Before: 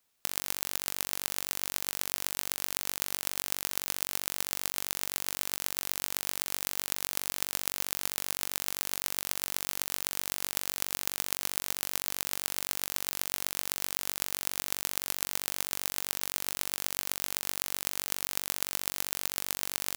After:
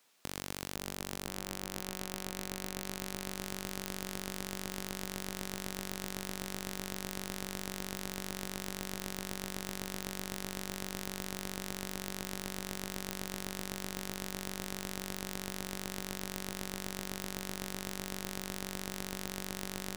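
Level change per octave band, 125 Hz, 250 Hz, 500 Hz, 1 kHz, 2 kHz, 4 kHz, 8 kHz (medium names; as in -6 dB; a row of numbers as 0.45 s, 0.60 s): +7.0 dB, +8.5 dB, +3.0 dB, -2.5 dB, -4.0 dB, -6.5 dB, -9.0 dB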